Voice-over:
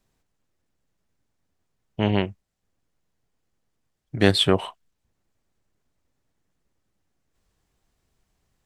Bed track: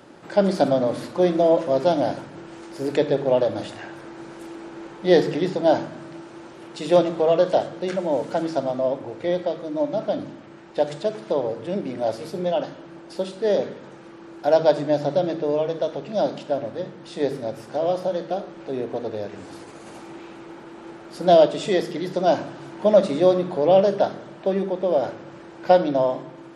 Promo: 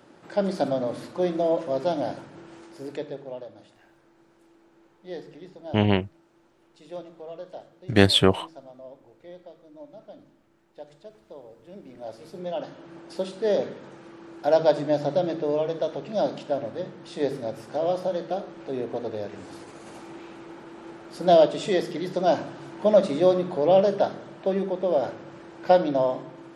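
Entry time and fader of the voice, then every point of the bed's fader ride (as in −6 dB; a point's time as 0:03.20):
3.75 s, +1.0 dB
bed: 0:02.56 −6 dB
0:03.55 −21 dB
0:11.48 −21 dB
0:12.96 −2.5 dB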